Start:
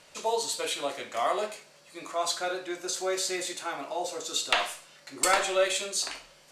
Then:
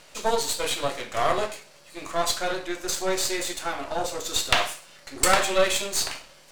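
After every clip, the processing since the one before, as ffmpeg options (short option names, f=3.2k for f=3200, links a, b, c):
-af "aeval=exprs='if(lt(val(0),0),0.251*val(0),val(0))':c=same,volume=7.5dB"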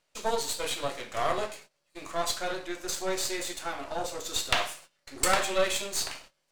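-af "agate=range=-19dB:threshold=-44dB:ratio=16:detection=peak,volume=-5dB"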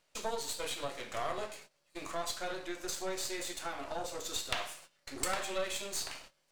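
-af "acompressor=threshold=-40dB:ratio=2,volume=1dB"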